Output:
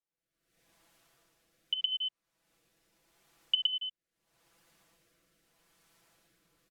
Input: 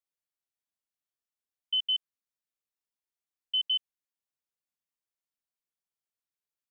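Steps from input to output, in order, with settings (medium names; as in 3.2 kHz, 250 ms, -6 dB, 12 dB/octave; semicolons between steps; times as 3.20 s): recorder AGC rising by 52 dB/s; treble shelf 2.7 kHz -10 dB; comb 6 ms, depth 73%; on a send: delay 116 ms -3 dB; on the sum: low-pass that closes with the level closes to 2.7 kHz, closed at -17 dBFS; peak limiter -16 dBFS, peak gain reduction 7 dB; rotary cabinet horn 0.8 Hz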